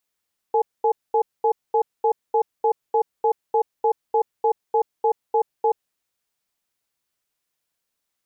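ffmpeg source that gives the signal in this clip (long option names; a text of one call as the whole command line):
ffmpeg -f lavfi -i "aevalsrc='0.126*(sin(2*PI*453*t)+sin(2*PI*846*t))*clip(min(mod(t,0.3),0.08-mod(t,0.3))/0.005,0,1)':duration=5.39:sample_rate=44100" out.wav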